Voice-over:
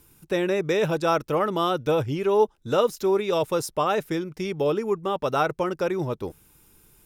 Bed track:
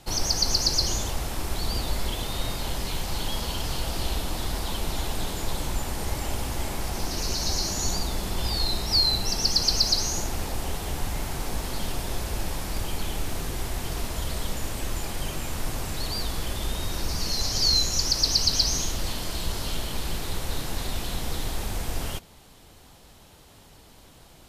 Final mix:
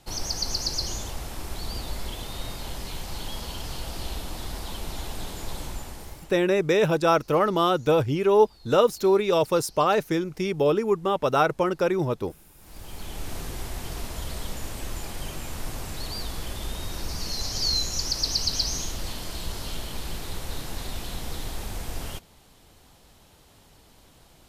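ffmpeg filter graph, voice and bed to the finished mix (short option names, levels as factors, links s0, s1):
-filter_complex "[0:a]adelay=6000,volume=1.26[s0];[1:a]volume=10,afade=t=out:st=5.63:d=0.77:silence=0.0668344,afade=t=in:st=12.57:d=0.77:silence=0.0562341[s1];[s0][s1]amix=inputs=2:normalize=0"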